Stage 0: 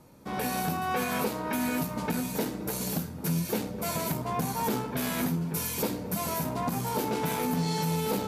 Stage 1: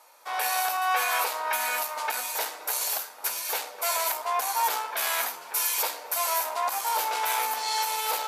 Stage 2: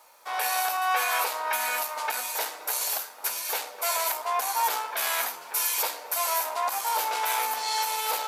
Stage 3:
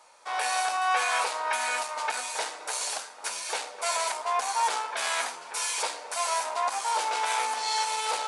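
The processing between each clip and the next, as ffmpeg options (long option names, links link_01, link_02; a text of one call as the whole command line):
ffmpeg -i in.wav -af "highpass=frequency=720:width=0.5412,highpass=frequency=720:width=1.3066,volume=7dB" out.wav
ffmpeg -i in.wav -af "acrusher=bits=10:mix=0:aa=0.000001" out.wav
ffmpeg -i in.wav -af "aresample=22050,aresample=44100" out.wav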